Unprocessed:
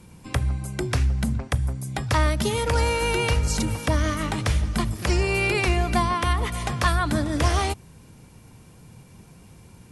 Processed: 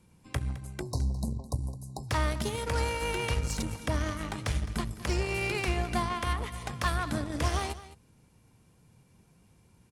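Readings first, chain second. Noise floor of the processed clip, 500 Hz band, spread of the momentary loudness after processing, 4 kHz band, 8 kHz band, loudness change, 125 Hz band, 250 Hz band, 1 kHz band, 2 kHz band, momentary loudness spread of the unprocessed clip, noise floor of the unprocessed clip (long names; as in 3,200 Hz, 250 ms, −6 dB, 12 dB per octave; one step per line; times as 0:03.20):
−63 dBFS, −8.0 dB, 7 LU, −7.5 dB, −7.5 dB, −8.0 dB, −8.5 dB, −8.0 dB, −8.0 dB, −8.0 dB, 6 LU, −49 dBFS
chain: harmonic generator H 7 −23 dB, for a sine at −10 dBFS
time-frequency box erased 0:00.82–0:02.10, 1,100–3,800 Hz
single-tap delay 212 ms −16 dB
level −7.5 dB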